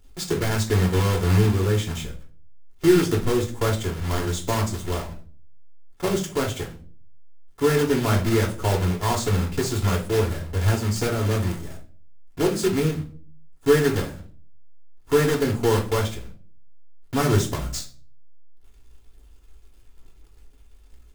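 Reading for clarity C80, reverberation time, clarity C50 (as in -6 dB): 17.5 dB, not exponential, 11.0 dB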